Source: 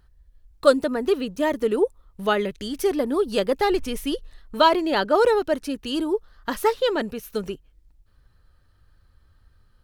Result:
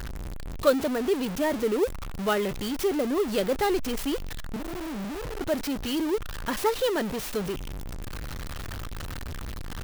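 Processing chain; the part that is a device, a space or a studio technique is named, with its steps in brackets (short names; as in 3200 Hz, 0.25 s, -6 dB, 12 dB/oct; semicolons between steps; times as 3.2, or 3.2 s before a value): 4.56–5.41 inverse Chebyshev band-stop 980–9600 Hz, stop band 80 dB; early CD player with a faulty converter (zero-crossing step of -22.5 dBFS; clock jitter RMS 0.022 ms); gain -6 dB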